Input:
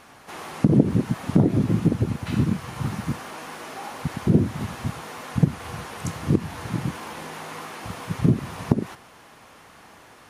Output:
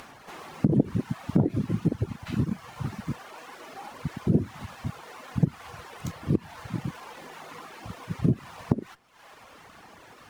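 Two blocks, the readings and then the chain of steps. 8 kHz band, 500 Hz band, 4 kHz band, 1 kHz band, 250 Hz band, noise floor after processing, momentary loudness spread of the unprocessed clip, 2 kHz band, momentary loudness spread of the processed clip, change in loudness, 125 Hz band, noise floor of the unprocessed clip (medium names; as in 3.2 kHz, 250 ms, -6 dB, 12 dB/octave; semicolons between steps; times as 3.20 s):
-9.5 dB, -5.0 dB, -7.0 dB, -6.5 dB, -5.0 dB, -52 dBFS, 15 LU, -6.5 dB, 18 LU, -4.5 dB, -5.0 dB, -50 dBFS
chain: upward compressor, threshold -35 dBFS; reverb removal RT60 1.2 s; sliding maximum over 3 samples; trim -4 dB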